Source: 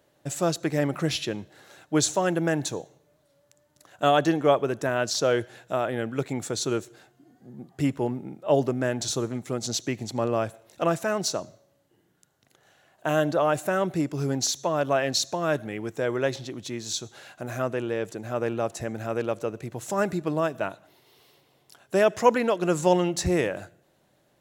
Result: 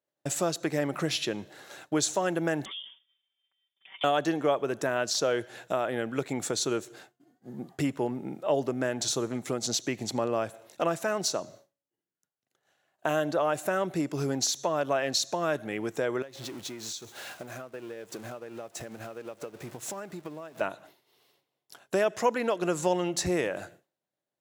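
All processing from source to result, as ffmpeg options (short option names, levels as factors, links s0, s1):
-filter_complex "[0:a]asettb=1/sr,asplit=3[s0][s1][s2];[s0]atrim=end=2.654[s3];[s1]atrim=start=2.65:end=4.04,asetpts=PTS-STARTPTS,afade=t=in:d=0.004:c=qsin,afade=t=out:st=1.386:d=0.004:c=qsin,lowpass=f=3100:t=q:w=0.5098,lowpass=f=3100:t=q:w=0.6013,lowpass=f=3100:t=q:w=0.9,lowpass=f=3100:t=q:w=2.563,afreqshift=-3700,acompressor=threshold=0.01:ratio=16:attack=3.2:release=140:knee=1:detection=peak,aecho=1:1:5.2:0.8,atrim=end_sample=61299[s4];[s2]atrim=start=4.036[s5];[s3][s4]acrossfade=d=0.004:c1=hsin:c2=qsin[s6];[s6][s5]acrossfade=d=0.004:c1=qsin:c2=hsin,asettb=1/sr,asplit=3[s7][s8][s9];[s7]atrim=end=16.224[s10];[s8]atrim=start=16.22:end=20.61,asetpts=PTS-STARTPTS,afade=t=in:d=0.004:c=qsin,afade=t=out:st=4.386:d=0.004:c=qsin,aeval=exprs='val(0)+0.5*0.0178*sgn(val(0))':c=same,acompressor=threshold=0.0224:ratio=16:attack=3.2:release=140:knee=1:detection=peak,agate=range=0.0224:threshold=0.0251:ratio=3:release=100:detection=peak[s11];[s9]atrim=start=20.606[s12];[s10][s11]acrossfade=d=0.004:c1=hsin:c2=qsin[s13];[s13][s12]acrossfade=d=0.004:c1=qsin:c2=hsin,highpass=f=230:p=1,agate=range=0.0224:threshold=0.00355:ratio=3:detection=peak,acompressor=threshold=0.0141:ratio=2,volume=2"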